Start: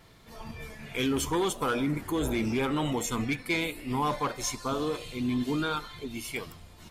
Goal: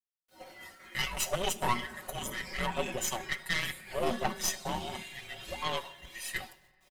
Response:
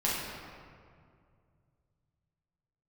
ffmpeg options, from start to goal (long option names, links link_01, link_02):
-filter_complex "[0:a]agate=range=-33dB:threshold=-38dB:ratio=3:detection=peak,highpass=frequency=560:width=0.5412,highpass=frequency=560:width=1.3066,aecho=1:1:5.4:0.91,afreqshift=-360,acrusher=bits=10:mix=0:aa=0.000001,aeval=exprs='0.211*(cos(1*acos(clip(val(0)/0.211,-1,1)))-cos(1*PI/2))+0.0531*(cos(4*acos(clip(val(0)/0.211,-1,1)))-cos(4*PI/2))':channel_layout=same,asplit=2[link_01][link_02];[1:a]atrim=start_sample=2205,highshelf=frequency=4500:gain=9[link_03];[link_02][link_03]afir=irnorm=-1:irlink=0,volume=-28.5dB[link_04];[link_01][link_04]amix=inputs=2:normalize=0,volume=-3dB"